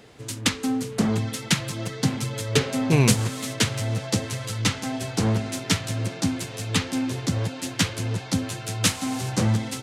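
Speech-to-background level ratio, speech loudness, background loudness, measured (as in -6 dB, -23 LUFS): 1.5 dB, -24.0 LUFS, -25.5 LUFS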